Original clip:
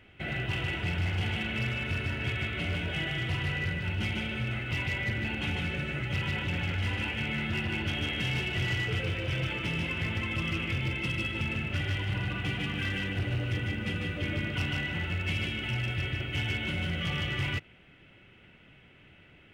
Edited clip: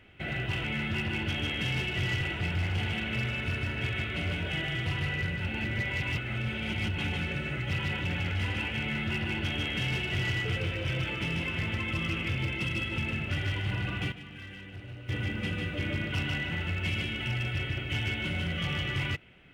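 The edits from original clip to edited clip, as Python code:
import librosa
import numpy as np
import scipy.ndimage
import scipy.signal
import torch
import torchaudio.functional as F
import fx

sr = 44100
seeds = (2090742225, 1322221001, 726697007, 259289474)

y = fx.edit(x, sr, fx.reverse_span(start_s=3.91, length_s=1.5),
    fx.duplicate(start_s=7.23, length_s=1.57, to_s=0.64),
    fx.fade_down_up(start_s=12.43, length_s=1.21, db=-12.5, fade_s=0.12, curve='log'), tone=tone)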